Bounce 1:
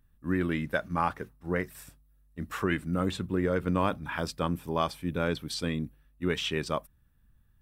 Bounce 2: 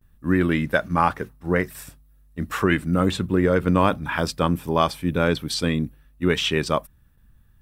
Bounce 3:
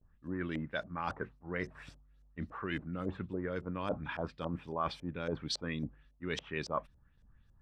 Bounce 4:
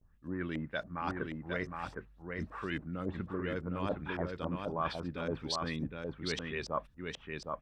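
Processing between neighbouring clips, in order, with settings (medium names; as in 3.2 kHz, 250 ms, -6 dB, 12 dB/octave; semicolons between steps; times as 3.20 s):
gate with hold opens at -59 dBFS; trim +8.5 dB
reverse; compression, threshold -26 dBFS, peak gain reduction 13 dB; reverse; LFO low-pass saw up 3.6 Hz 540–6600 Hz; trim -8.5 dB
delay 762 ms -4 dB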